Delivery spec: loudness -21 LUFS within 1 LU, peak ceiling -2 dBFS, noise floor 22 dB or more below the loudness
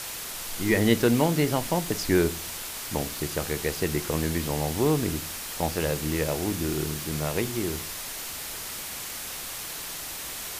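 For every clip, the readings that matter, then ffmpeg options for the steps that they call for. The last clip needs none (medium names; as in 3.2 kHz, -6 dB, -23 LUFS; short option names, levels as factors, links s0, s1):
noise floor -36 dBFS; noise floor target -50 dBFS; loudness -27.5 LUFS; peak level -7.0 dBFS; loudness target -21.0 LUFS
-> -af "afftdn=nr=14:nf=-36"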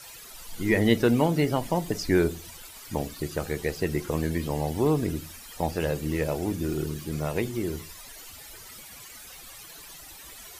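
noise floor -46 dBFS; noise floor target -50 dBFS
-> -af "afftdn=nr=6:nf=-46"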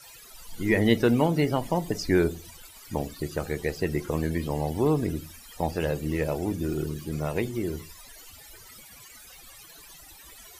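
noise floor -49 dBFS; noise floor target -50 dBFS
-> -af "afftdn=nr=6:nf=-49"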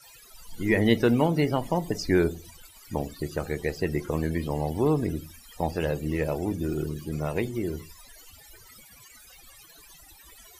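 noise floor -52 dBFS; loudness -27.5 LUFS; peak level -7.0 dBFS; loudness target -21.0 LUFS
-> -af "volume=2.11,alimiter=limit=0.794:level=0:latency=1"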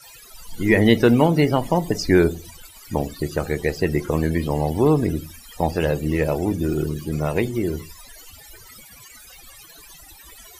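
loudness -21.0 LUFS; peak level -2.0 dBFS; noise floor -46 dBFS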